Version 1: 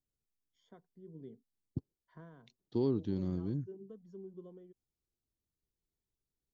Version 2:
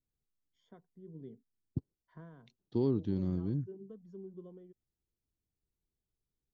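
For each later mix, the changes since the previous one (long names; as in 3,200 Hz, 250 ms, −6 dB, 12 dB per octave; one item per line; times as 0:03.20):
master: add bass and treble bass +3 dB, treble −4 dB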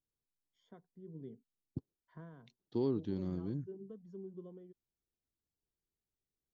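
second voice: add low-shelf EQ 210 Hz −9 dB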